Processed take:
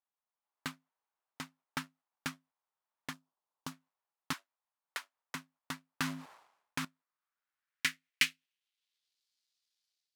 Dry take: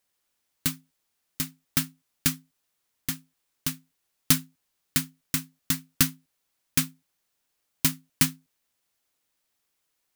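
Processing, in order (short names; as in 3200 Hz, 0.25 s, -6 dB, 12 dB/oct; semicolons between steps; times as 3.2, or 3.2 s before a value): G.711 law mismatch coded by A; AGC gain up to 8.5 dB; dynamic EQ 770 Hz, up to -8 dB, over -45 dBFS, Q 0.87; band-pass sweep 930 Hz -> 4400 Hz, 6.75–9.24; 3.13–3.72 bell 2100 Hz -10.5 dB 1.3 oct; 4.33–5.35 steep high-pass 400 Hz 48 dB/oct; 5.91–6.85 sustainer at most 85 dB/s; gain +3 dB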